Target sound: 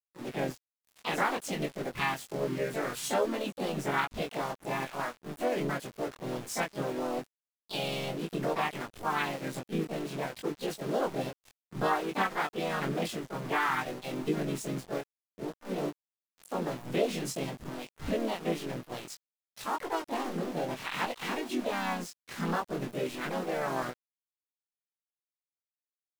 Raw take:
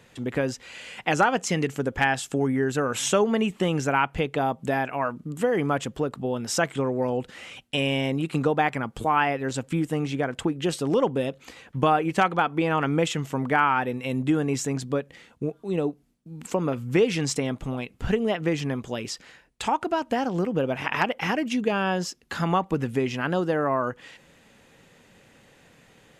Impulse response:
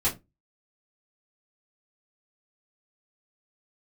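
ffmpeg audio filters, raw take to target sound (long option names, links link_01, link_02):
-filter_complex "[0:a]aeval=exprs='val(0)*gte(abs(val(0)),0.0316)':channel_layout=same,flanger=delay=20:depth=4.5:speed=0.56,asplit=4[link_01][link_02][link_03][link_04];[link_02]asetrate=52444,aresample=44100,atempo=0.840896,volume=-5dB[link_05];[link_03]asetrate=58866,aresample=44100,atempo=0.749154,volume=-6dB[link_06];[link_04]asetrate=66075,aresample=44100,atempo=0.66742,volume=-5dB[link_07];[link_01][link_05][link_06][link_07]amix=inputs=4:normalize=0,volume=-8dB"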